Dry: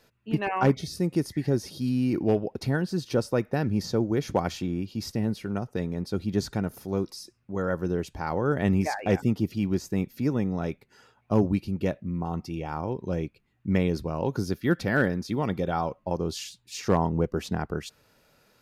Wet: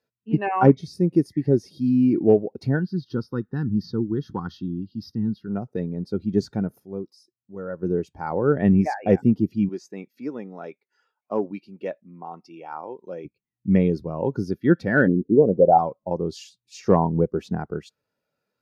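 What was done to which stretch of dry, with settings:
2.79–5.47 s: static phaser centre 2.3 kHz, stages 6
6.80–7.83 s: gain -5.5 dB
9.69–13.25 s: frequency weighting A
15.06–15.77 s: resonant low-pass 300 Hz -> 740 Hz, resonance Q 3
whole clip: high-pass 130 Hz 6 dB/octave; spectral contrast expander 1.5:1; trim +7.5 dB

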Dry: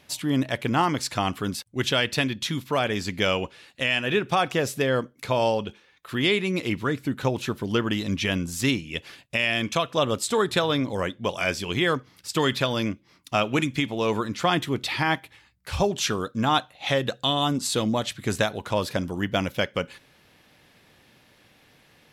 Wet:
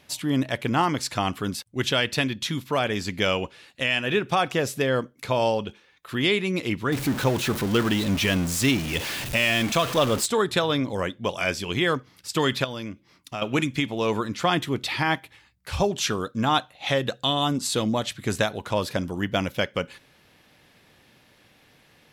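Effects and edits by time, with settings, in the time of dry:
6.92–10.26 s: jump at every zero crossing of -26 dBFS
12.64–13.42 s: compression 2:1, threshold -35 dBFS

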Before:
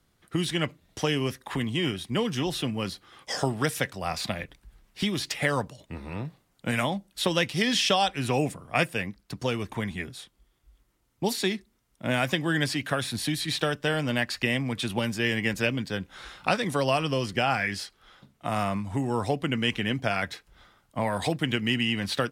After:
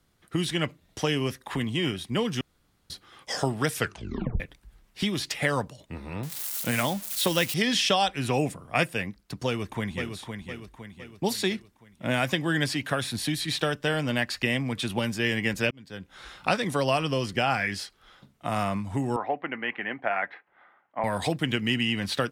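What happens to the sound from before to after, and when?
2.41–2.90 s: room tone
3.75 s: tape stop 0.65 s
6.23–7.54 s: zero-crossing glitches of -24.5 dBFS
9.46–10.14 s: echo throw 510 ms, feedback 50%, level -6.5 dB
15.71–16.36 s: fade in
19.16–21.04 s: cabinet simulation 410–2200 Hz, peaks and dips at 450 Hz -4 dB, 780 Hz +5 dB, 1.9 kHz +4 dB

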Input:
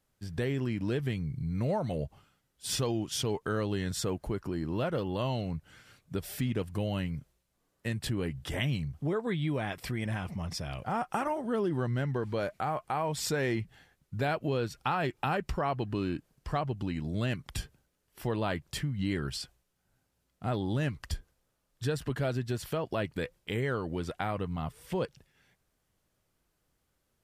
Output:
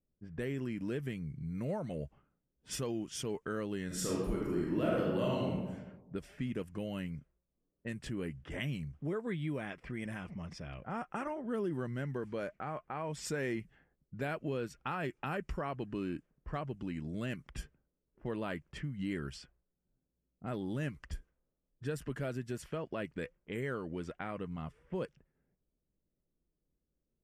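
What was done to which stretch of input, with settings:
3.86–5.53 s: reverb throw, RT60 1.2 s, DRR -4.5 dB
whole clip: peaking EQ 730 Hz -10.5 dB 1.1 oct; level-controlled noise filter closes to 470 Hz, open at -29.5 dBFS; fifteen-band graphic EQ 100 Hz -11 dB, 630 Hz +5 dB, 4 kHz -11 dB; trim -3 dB

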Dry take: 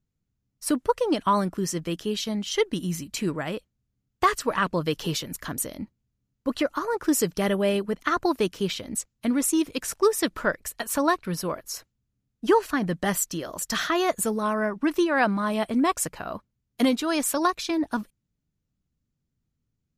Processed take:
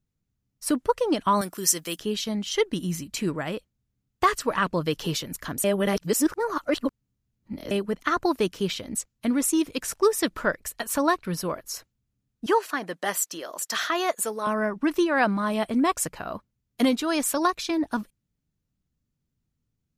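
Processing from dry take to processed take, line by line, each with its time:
1.41–1.99 s: RIAA curve recording
5.64–7.71 s: reverse
12.46–14.47 s: high-pass 430 Hz

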